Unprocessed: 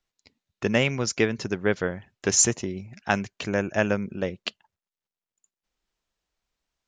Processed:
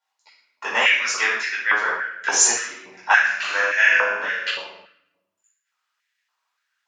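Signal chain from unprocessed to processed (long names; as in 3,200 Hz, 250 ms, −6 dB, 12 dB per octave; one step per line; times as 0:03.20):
0:03.17–0:04.47: flutter between parallel walls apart 7.1 metres, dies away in 0.78 s
convolution reverb RT60 0.90 s, pre-delay 6 ms, DRR −9.5 dB
high-pass on a step sequencer 3.5 Hz 880–1,900 Hz
level −6 dB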